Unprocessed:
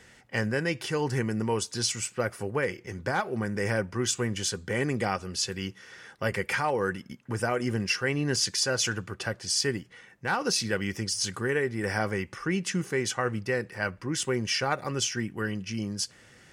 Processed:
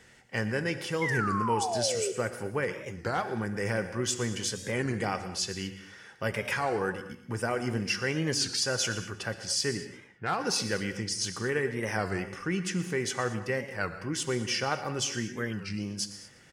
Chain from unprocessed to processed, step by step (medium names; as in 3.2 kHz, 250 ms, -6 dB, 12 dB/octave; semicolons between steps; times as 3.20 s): 1.02–2.12 s: painted sound fall 370–2000 Hz -29 dBFS; 9.75–11.24 s: level-controlled noise filter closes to 2 kHz, open at -25 dBFS; on a send: feedback delay 119 ms, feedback 35%, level -16.5 dB; on the sum: gated-style reverb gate 250 ms flat, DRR 10.5 dB; warped record 33 1/3 rpm, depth 160 cents; trim -2.5 dB